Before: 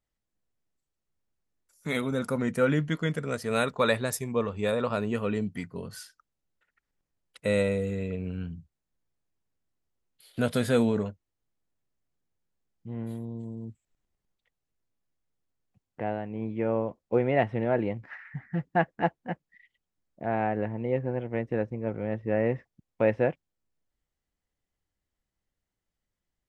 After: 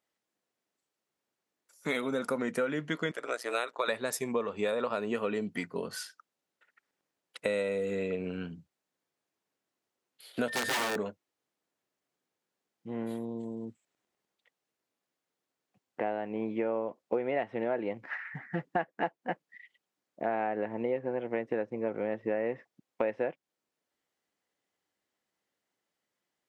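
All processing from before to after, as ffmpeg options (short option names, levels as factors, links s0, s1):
-filter_complex "[0:a]asettb=1/sr,asplit=3[s0][s1][s2];[s0]atrim=end=3.114[s3];[s1]atrim=start=3.11:end=3.88,asetpts=PTS-STARTPTS,afade=t=in:d=0.004:c=qsin,afade=t=out:st=0.766:d=0.004:c=qsin,highpass=520,tremolo=f=120:d=0.889[s4];[s2]atrim=start=3.876[s5];[s3][s4]acrossfade=d=0.004:c1=hsin:c2=qsin[s6];[s6][s5]acrossfade=d=0.004:c1=qsin:c2=hsin,asettb=1/sr,asplit=3[s7][s8][s9];[s7]atrim=end=10.484[s10];[s8]atrim=start=10.48:end=10.96,asetpts=PTS-STARTPTS,afade=t=in:d=0.004:c=qsin,afade=t=out:st=0.476:d=0.004:c=qsin,aeval=exprs='(mod(12.6*val(0)+1,2)-1)/12.6':c=same,aeval=exprs='val(0)+0.0178*sin(2*PI*1800*n/s)':c=same[s11];[s9]atrim=start=10.956[s12];[s10][s11]acrossfade=d=0.004:c1=hsin:c2=qsin[s13];[s13][s12]acrossfade=d=0.004:c1=qsin:c2=hsin,highpass=300,highshelf=f=7900:g=-6.5,acompressor=threshold=0.02:ratio=6,volume=2"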